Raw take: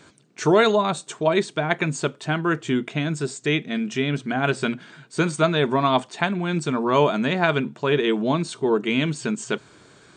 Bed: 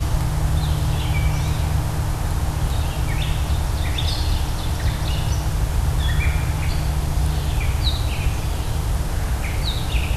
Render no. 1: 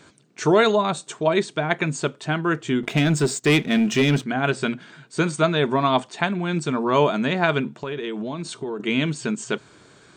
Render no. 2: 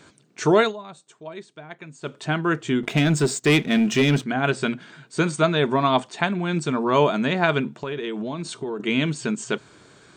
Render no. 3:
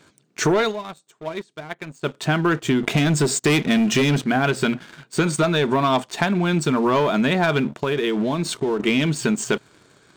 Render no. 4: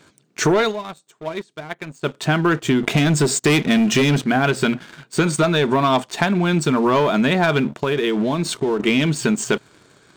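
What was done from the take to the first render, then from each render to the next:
0:02.83–0:04.24: leveller curve on the samples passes 2; 0:07.73–0:08.80: downward compressor 10 to 1, threshold −25 dBFS
0:00.59–0:02.16: duck −17 dB, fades 0.15 s
leveller curve on the samples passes 2; downward compressor, threshold −16 dBFS, peak gain reduction 7 dB
level +2 dB

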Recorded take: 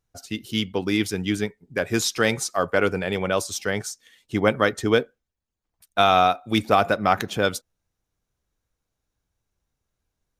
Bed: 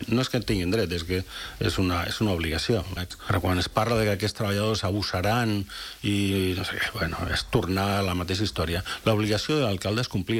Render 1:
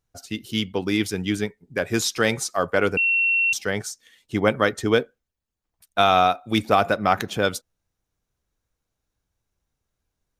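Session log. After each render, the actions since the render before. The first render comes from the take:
0:02.97–0:03.53: beep over 2,720 Hz −17 dBFS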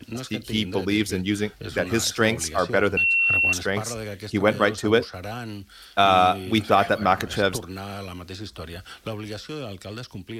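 mix in bed −9.5 dB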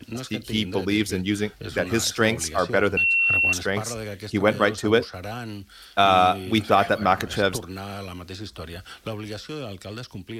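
no processing that can be heard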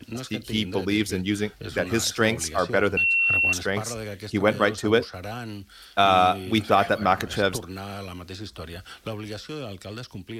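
level −1 dB

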